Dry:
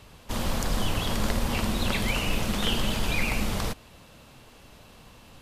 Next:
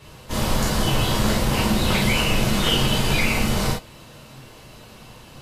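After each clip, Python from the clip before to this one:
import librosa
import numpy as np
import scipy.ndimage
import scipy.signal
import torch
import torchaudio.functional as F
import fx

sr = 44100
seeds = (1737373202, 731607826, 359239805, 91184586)

y = fx.rev_gated(x, sr, seeds[0], gate_ms=80, shape='flat', drr_db=-6.0)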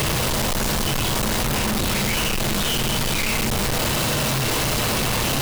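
y = np.sign(x) * np.sqrt(np.mean(np.square(x)))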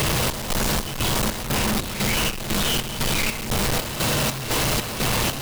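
y = fx.chopper(x, sr, hz=2.0, depth_pct=60, duty_pct=60)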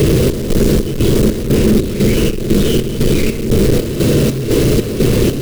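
y = fx.low_shelf_res(x, sr, hz=580.0, db=12.0, q=3.0)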